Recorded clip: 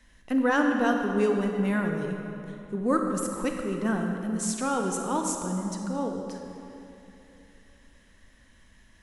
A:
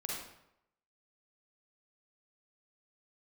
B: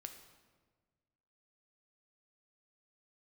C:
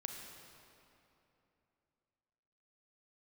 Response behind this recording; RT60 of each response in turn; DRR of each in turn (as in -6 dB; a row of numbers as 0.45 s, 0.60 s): C; 0.80 s, 1.5 s, 3.0 s; -3.5 dB, 5.5 dB, 2.5 dB